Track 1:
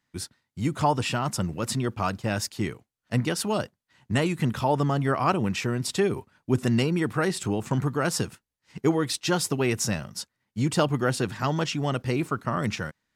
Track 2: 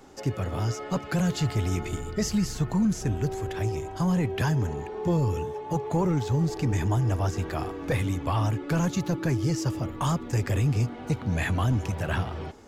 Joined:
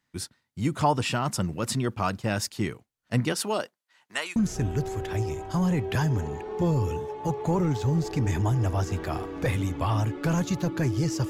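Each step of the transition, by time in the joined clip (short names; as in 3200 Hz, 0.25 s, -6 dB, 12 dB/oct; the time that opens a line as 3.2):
track 1
3.32–4.36 HPF 200 Hz -> 1300 Hz
4.36 switch to track 2 from 2.82 s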